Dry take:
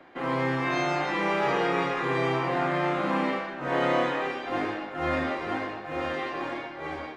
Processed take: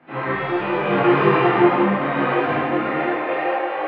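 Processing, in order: low-pass 2.8 kHz 24 dB/octave; hum notches 60/120/180/240/300/360/420/480/540/600 Hz; peak limiter -19 dBFS, peak gain reduction 5 dB; harmony voices +4 st -8 dB; high-pass sweep 120 Hz -> 570 Hz, 4.54–5.81 s; time stretch by phase-locked vocoder 0.54×; random-step tremolo; on a send: filtered feedback delay 71 ms, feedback 72%, low-pass 2.1 kHz, level -6 dB; on the sum: Schroeder reverb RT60 2 s, combs from 25 ms, DRR -8 dB; detune thickener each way 27 cents; trim +5 dB

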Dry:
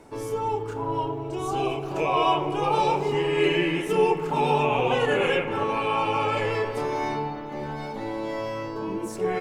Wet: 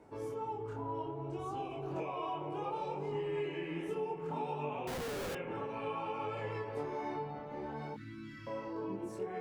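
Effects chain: high-pass 46 Hz; treble shelf 2.5 kHz -10.5 dB; 7.94–8.47 s: elliptic band-stop 290–1400 Hz, stop band 40 dB; compression 6:1, threshold -28 dBFS, peak gain reduction 11 dB; chorus 0.61 Hz, delay 19 ms, depth 6.8 ms; 4.87–5.35 s: Schmitt trigger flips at -37.5 dBFS; trim -4.5 dB

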